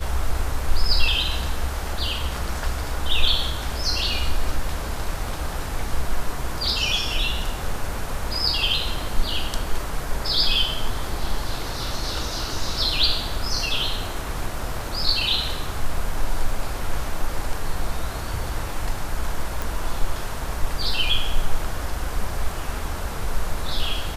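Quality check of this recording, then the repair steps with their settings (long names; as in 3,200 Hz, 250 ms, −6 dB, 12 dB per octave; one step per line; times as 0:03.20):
0:19.62: click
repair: click removal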